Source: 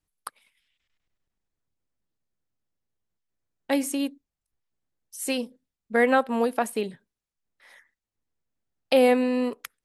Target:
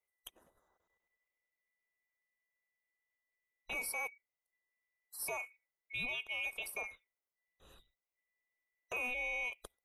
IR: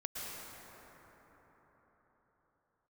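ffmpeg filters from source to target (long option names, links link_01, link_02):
-af "afftfilt=real='real(if(lt(b,920),b+92*(1-2*mod(floor(b/92),2)),b),0)':imag='imag(if(lt(b,920),b+92*(1-2*mod(floor(b/92),2)),b),0)':win_size=2048:overlap=0.75,equalizer=frequency=125:width_type=o:width=1:gain=-10,equalizer=frequency=250:width_type=o:width=1:gain=-7,equalizer=frequency=500:width_type=o:width=1:gain=4,equalizer=frequency=2000:width_type=o:width=1:gain=-9,equalizer=frequency=4000:width_type=o:width=1:gain=-10,equalizer=frequency=8000:width_type=o:width=1:gain=-9,acompressor=threshold=-32dB:ratio=6,alimiter=level_in=6dB:limit=-24dB:level=0:latency=1:release=13,volume=-6dB"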